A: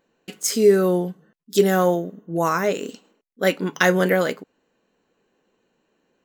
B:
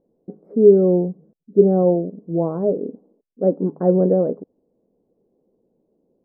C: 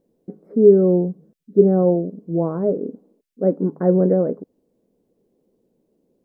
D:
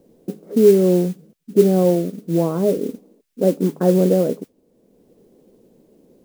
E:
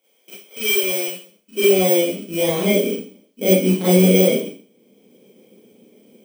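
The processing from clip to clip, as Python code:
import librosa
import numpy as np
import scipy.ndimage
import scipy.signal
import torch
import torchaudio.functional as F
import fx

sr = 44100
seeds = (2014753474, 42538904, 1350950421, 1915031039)

y1 = scipy.signal.sosfilt(scipy.signal.cheby2(4, 70, 2700.0, 'lowpass', fs=sr, output='sos'), x)
y1 = y1 * librosa.db_to_amplitude(4.0)
y2 = fx.curve_eq(y1, sr, hz=(250.0, 790.0, 1800.0), db=(0, -3, 8))
y2 = y2 * librosa.db_to_amplitude(1.0)
y3 = fx.mod_noise(y2, sr, seeds[0], snr_db=23)
y3 = fx.band_squash(y3, sr, depth_pct=40)
y3 = y3 * librosa.db_to_amplitude(1.0)
y4 = fx.bit_reversed(y3, sr, seeds[1], block=16)
y4 = fx.filter_sweep_highpass(y4, sr, from_hz=980.0, to_hz=130.0, start_s=0.62, end_s=2.86, q=0.71)
y4 = fx.rev_schroeder(y4, sr, rt60_s=0.43, comb_ms=29, drr_db=-9.5)
y4 = y4 * librosa.db_to_amplitude(-7.5)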